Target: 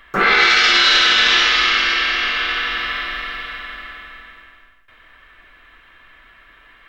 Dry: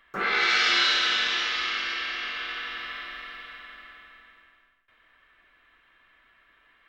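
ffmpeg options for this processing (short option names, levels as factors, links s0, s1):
-af "lowshelf=f=65:g=10,alimiter=level_in=5.96:limit=0.891:release=50:level=0:latency=1,volume=0.75"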